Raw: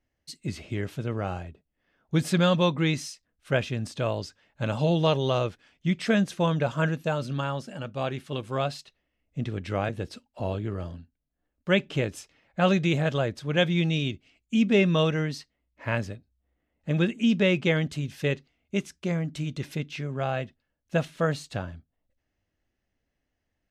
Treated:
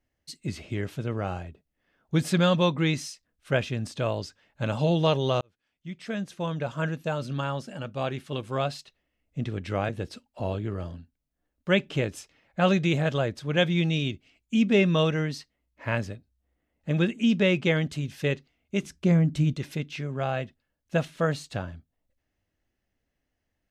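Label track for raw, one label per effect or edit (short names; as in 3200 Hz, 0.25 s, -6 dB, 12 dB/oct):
5.410000	7.520000	fade in
18.820000	19.540000	low shelf 340 Hz +10 dB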